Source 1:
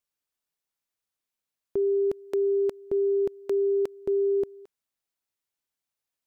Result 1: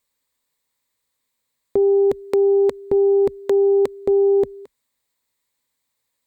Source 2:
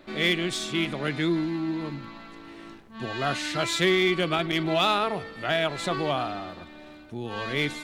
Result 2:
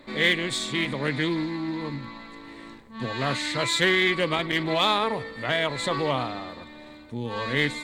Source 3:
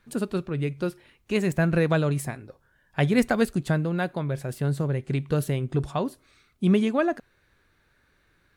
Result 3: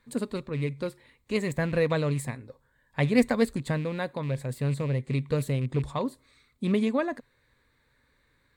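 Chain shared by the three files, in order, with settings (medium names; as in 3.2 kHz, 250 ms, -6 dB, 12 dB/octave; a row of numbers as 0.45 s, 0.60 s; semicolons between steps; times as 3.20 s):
rattle on loud lows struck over -26 dBFS, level -32 dBFS; rippled EQ curve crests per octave 1, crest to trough 8 dB; loudspeaker Doppler distortion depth 0.11 ms; peak normalisation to -9 dBFS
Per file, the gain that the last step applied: +10.5 dB, +1.0 dB, -3.5 dB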